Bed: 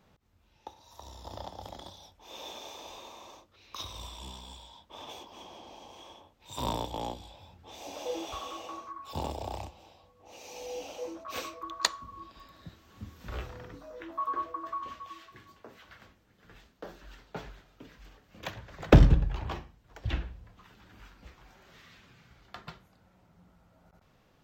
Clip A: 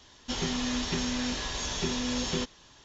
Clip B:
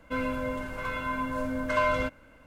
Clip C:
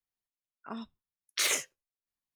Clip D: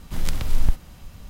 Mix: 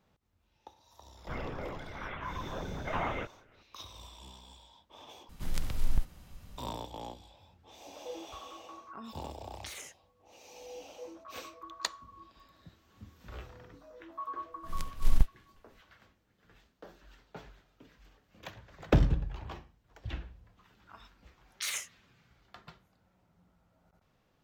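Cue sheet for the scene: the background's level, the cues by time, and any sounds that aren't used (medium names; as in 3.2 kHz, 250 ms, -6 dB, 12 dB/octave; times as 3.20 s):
bed -7 dB
1.17 s: add B -8 dB + LPC vocoder at 8 kHz whisper
5.29 s: replace with D -9 dB
8.27 s: add C -3 dB + compression, threshold -39 dBFS
14.52 s: add D -3.5 dB + upward expansion 2.5:1, over -25 dBFS
20.23 s: add C -7 dB + high-pass 950 Hz
not used: A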